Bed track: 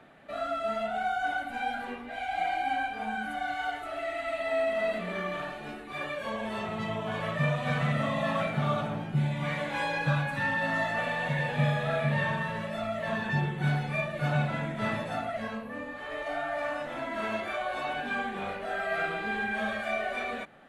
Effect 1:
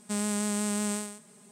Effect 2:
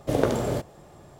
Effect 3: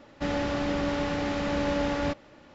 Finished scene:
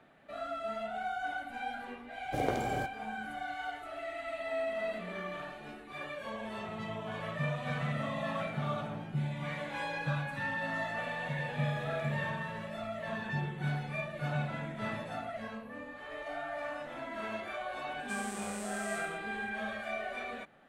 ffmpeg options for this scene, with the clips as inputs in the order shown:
ffmpeg -i bed.wav -i cue0.wav -i cue1.wav -filter_complex "[2:a]asplit=2[link_01][link_02];[0:a]volume=-6.5dB[link_03];[link_02]acompressor=threshold=-34dB:ratio=6:attack=3.2:release=140:knee=1:detection=peak[link_04];[1:a]asuperstop=centerf=720:order=4:qfactor=7.4[link_05];[link_01]atrim=end=1.19,asetpts=PTS-STARTPTS,volume=-10.5dB,afade=type=in:duration=0.004:curve=hsin,afade=type=out:start_time=1.186:duration=0.004:curve=hsin,adelay=2250[link_06];[link_04]atrim=end=1.19,asetpts=PTS-STARTPTS,volume=-13.5dB,afade=type=in:duration=0.004:curve=hsin,afade=type=out:start_time=1.186:duration=0.004:curve=hsin,adelay=11690[link_07];[link_05]atrim=end=1.51,asetpts=PTS-STARTPTS,volume=-11.5dB,afade=type=in:duration=0.004:curve=hsin,afade=type=out:start_time=1.506:duration=0.004:curve=hsin,adelay=17990[link_08];[link_03][link_06][link_07][link_08]amix=inputs=4:normalize=0" out.wav

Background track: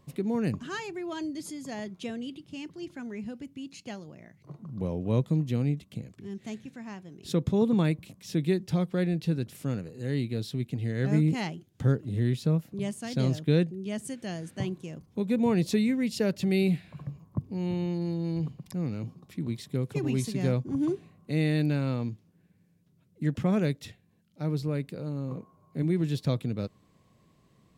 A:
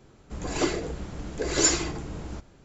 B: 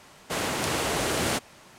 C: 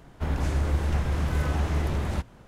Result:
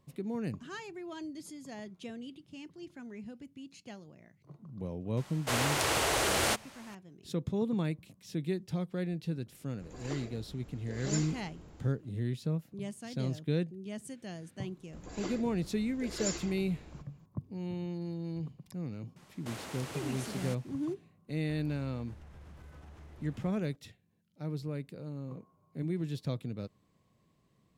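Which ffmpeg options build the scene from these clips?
ffmpeg -i bed.wav -i cue0.wav -i cue1.wav -i cue2.wav -filter_complex "[2:a]asplit=2[link_01][link_02];[1:a]asplit=2[link_03][link_04];[0:a]volume=-7.5dB[link_05];[link_01]equalizer=frequency=200:width=1.5:gain=-13[link_06];[link_02]acompressor=threshold=-30dB:ratio=6:attack=3.2:release=140:knee=1:detection=peak[link_07];[3:a]acompressor=threshold=-36dB:ratio=6:attack=3.2:release=140:knee=1:detection=peak[link_08];[link_06]atrim=end=1.78,asetpts=PTS-STARTPTS,volume=-1dB,afade=type=in:duration=0.004:curve=hsin,afade=type=out:start_time=1.776:duration=0.004:curve=hsin,adelay=227997S[link_09];[link_03]atrim=end=2.64,asetpts=PTS-STARTPTS,volume=-16.5dB,afade=type=in:duration=0.004:curve=hsin,afade=type=out:start_time=2.636:duration=0.004:curve=hsin,adelay=9490[link_10];[link_04]atrim=end=2.64,asetpts=PTS-STARTPTS,volume=-14.5dB,afade=type=in:duration=0.004:curve=hsin,afade=type=out:start_time=2.636:duration=0.004:curve=hsin,adelay=14620[link_11];[link_07]atrim=end=1.78,asetpts=PTS-STARTPTS,volume=-10dB,afade=type=in:duration=0.004:curve=hsin,afade=type=out:start_time=1.776:duration=0.004:curve=hsin,adelay=19160[link_12];[link_08]atrim=end=2.47,asetpts=PTS-STARTPTS,volume=-13dB,afade=type=in:duration=0.004:curve=hsin,afade=type=out:start_time=2.466:duration=0.004:curve=hsin,adelay=21290[link_13];[link_05][link_09][link_10][link_11][link_12][link_13]amix=inputs=6:normalize=0" out.wav

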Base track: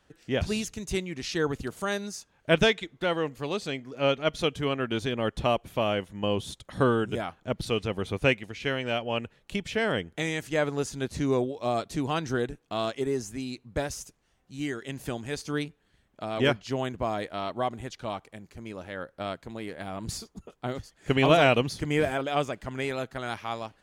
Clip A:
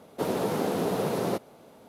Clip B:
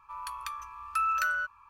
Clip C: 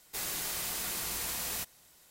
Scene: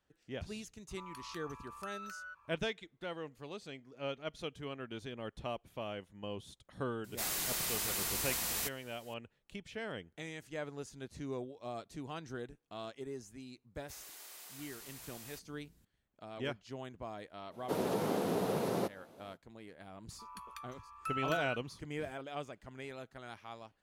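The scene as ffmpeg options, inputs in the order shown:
ffmpeg -i bed.wav -i cue0.wav -i cue1.wav -i cue2.wav -filter_complex "[2:a]asplit=2[link_01][link_02];[3:a]asplit=2[link_03][link_04];[0:a]volume=-15dB[link_05];[link_01]acompressor=threshold=-38dB:ratio=6:attack=3.2:release=140:knee=1:detection=peak[link_06];[link_04]acrossover=split=280[link_07][link_08];[link_07]adelay=710[link_09];[link_09][link_08]amix=inputs=2:normalize=0[link_10];[link_06]atrim=end=1.69,asetpts=PTS-STARTPTS,volume=-7.5dB,afade=type=in:duration=0.004:curve=hsin,afade=type=out:start_time=1.686:duration=0.004:curve=hsin,adelay=880[link_11];[link_03]atrim=end=2.1,asetpts=PTS-STARTPTS,volume=-0.5dB,afade=type=in:duration=0.004:curve=hsin,afade=type=out:start_time=2.096:duration=0.004:curve=hsin,adelay=7040[link_12];[link_10]atrim=end=2.1,asetpts=PTS-STARTPTS,volume=-16dB,afade=type=in:duration=0.004:curve=hsin,afade=type=out:start_time=2.096:duration=0.004:curve=hsin,adelay=13750[link_13];[1:a]atrim=end=1.88,asetpts=PTS-STARTPTS,volume=-6dB,afade=type=in:duration=0.05,afade=type=out:start_time=1.83:duration=0.05,adelay=17500[link_14];[link_02]atrim=end=1.69,asetpts=PTS-STARTPTS,volume=-11dB,afade=type=in:duration=0.004:curve=hsin,afade=type=out:start_time=1.686:duration=0.004:curve=hsin,adelay=20100[link_15];[link_05][link_11][link_12][link_13][link_14][link_15]amix=inputs=6:normalize=0" out.wav

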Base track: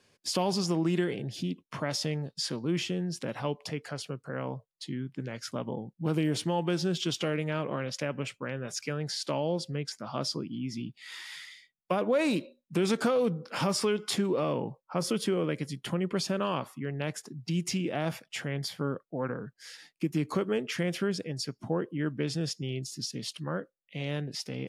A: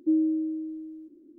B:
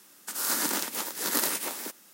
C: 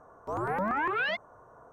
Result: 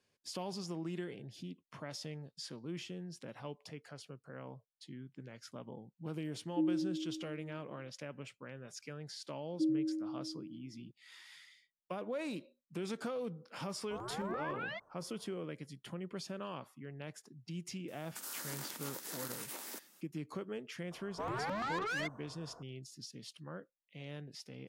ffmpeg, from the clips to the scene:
ffmpeg -i bed.wav -i cue0.wav -i cue1.wav -i cue2.wav -filter_complex "[1:a]asplit=2[link_01][link_02];[3:a]asplit=2[link_03][link_04];[0:a]volume=-13dB[link_05];[2:a]acompressor=threshold=-31dB:ratio=6:attack=3.2:release=140:knee=1:detection=peak[link_06];[link_04]asoftclip=type=tanh:threshold=-32.5dB[link_07];[link_01]atrim=end=1.38,asetpts=PTS-STARTPTS,volume=-9.5dB,afade=type=in:duration=0.004:curve=hsin,afade=type=out:start_time=1.376:duration=0.004:curve=hsin,adelay=286650S[link_08];[link_02]atrim=end=1.38,asetpts=PTS-STARTPTS,volume=-9dB,afade=type=in:duration=0.004:curve=hsin,afade=type=out:start_time=1.376:duration=0.004:curve=hsin,adelay=9530[link_09];[link_03]atrim=end=1.72,asetpts=PTS-STARTPTS,volume=-12.5dB,afade=type=in:duration=0.004:curve=hsin,afade=type=out:start_time=1.716:duration=0.004:curve=hsin,adelay=13630[link_10];[link_06]atrim=end=2.13,asetpts=PTS-STARTPTS,volume=-9dB,afade=type=in:duration=0.004:curve=hsin,afade=type=out:start_time=2.126:duration=0.004:curve=hsin,adelay=17880[link_11];[link_07]atrim=end=1.72,asetpts=PTS-STARTPTS,volume=-2.5dB,afade=type=in:duration=0.004:curve=hsin,afade=type=out:start_time=1.716:duration=0.004:curve=hsin,adelay=20910[link_12];[link_05][link_08][link_09][link_10][link_11][link_12]amix=inputs=6:normalize=0" out.wav

